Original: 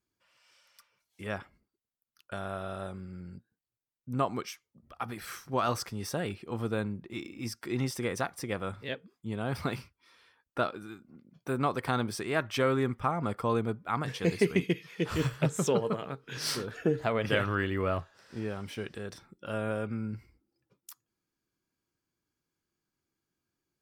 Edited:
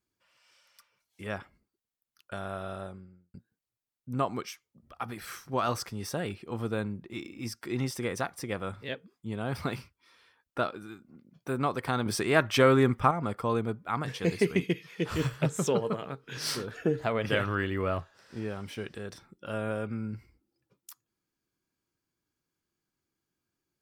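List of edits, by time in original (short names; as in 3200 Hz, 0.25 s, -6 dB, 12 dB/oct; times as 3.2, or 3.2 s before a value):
2.69–3.34 studio fade out
12.06–13.11 gain +6 dB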